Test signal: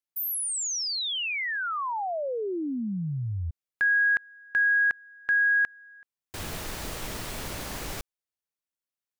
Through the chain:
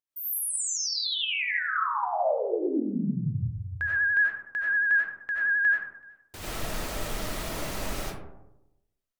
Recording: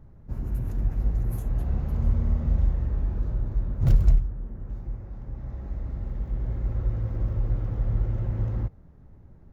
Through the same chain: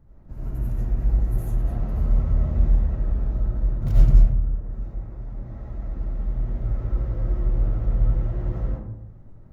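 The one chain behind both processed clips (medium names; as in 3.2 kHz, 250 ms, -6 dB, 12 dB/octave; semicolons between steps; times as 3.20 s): algorithmic reverb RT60 0.92 s, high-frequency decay 0.35×, pre-delay 50 ms, DRR -7 dB; vibrato 11 Hz 45 cents; trim -5.5 dB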